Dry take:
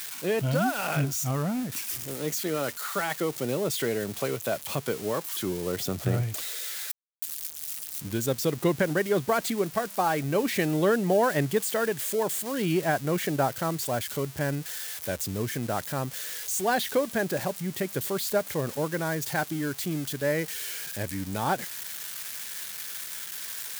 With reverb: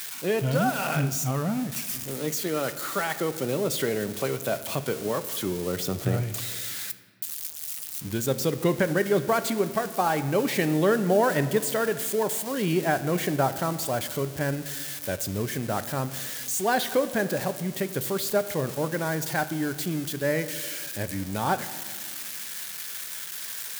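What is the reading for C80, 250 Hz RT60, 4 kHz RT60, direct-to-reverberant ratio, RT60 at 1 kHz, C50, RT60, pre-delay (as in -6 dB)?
14.5 dB, 2.5 s, 1.0 s, 11.0 dB, 1.5 s, 13.0 dB, 1.7 s, 4 ms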